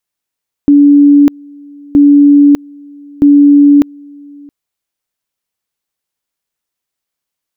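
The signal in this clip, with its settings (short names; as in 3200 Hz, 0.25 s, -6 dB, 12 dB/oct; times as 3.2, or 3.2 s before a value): two-level tone 287 Hz -1.5 dBFS, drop 28.5 dB, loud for 0.60 s, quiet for 0.67 s, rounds 3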